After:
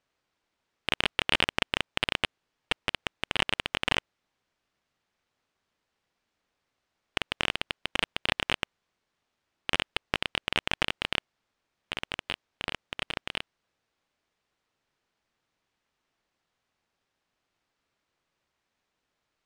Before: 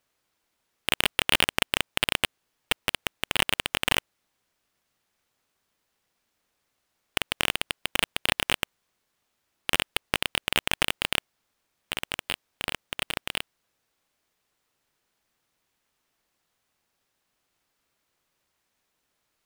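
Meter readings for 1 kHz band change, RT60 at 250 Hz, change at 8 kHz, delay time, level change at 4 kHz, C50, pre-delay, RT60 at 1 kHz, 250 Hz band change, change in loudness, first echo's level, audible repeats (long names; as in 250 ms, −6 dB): −2.0 dB, no reverb audible, −11.5 dB, no echo audible, −3.0 dB, no reverb audible, no reverb audible, no reverb audible, −1.5 dB, −3.0 dB, no echo audible, no echo audible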